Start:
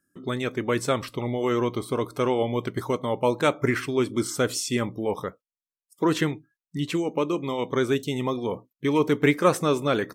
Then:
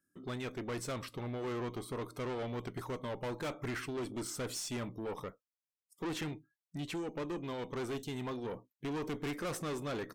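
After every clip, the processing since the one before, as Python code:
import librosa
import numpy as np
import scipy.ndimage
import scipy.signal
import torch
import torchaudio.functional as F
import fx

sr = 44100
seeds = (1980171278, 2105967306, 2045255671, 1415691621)

y = fx.tube_stage(x, sr, drive_db=27.0, bias=0.25)
y = y * librosa.db_to_amplitude(-7.5)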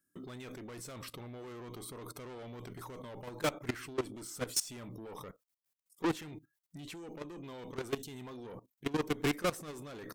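y = fx.high_shelf(x, sr, hz=7600.0, db=8.0)
y = fx.level_steps(y, sr, step_db=18)
y = y * librosa.db_to_amplitude(8.0)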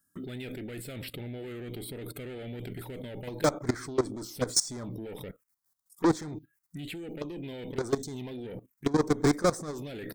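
y = fx.env_phaser(x, sr, low_hz=410.0, high_hz=2800.0, full_db=-37.5)
y = y * librosa.db_to_amplitude(8.5)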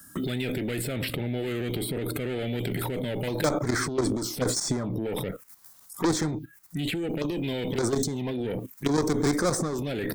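y = fx.transient(x, sr, attack_db=-4, sustain_db=11)
y = fx.band_squash(y, sr, depth_pct=70)
y = y * librosa.db_to_amplitude(4.0)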